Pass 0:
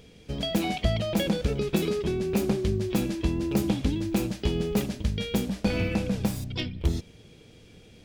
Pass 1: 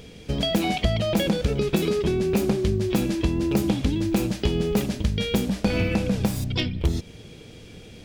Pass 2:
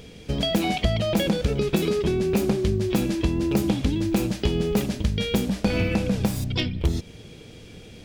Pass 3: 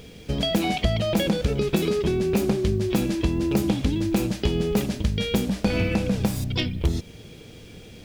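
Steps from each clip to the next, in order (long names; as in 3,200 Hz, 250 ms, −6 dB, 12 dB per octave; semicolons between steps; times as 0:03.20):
downward compressor 2 to 1, threshold −30 dBFS, peak gain reduction 7 dB; level +8 dB
no processing that can be heard
bit reduction 10 bits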